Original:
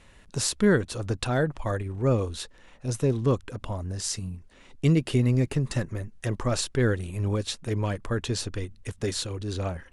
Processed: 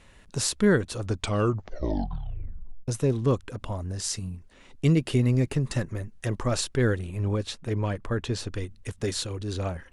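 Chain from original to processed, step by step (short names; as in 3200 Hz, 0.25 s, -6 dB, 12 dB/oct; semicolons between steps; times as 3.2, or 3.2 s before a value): 1.04 tape stop 1.84 s; 6.99–8.47 high shelf 4800 Hz -8 dB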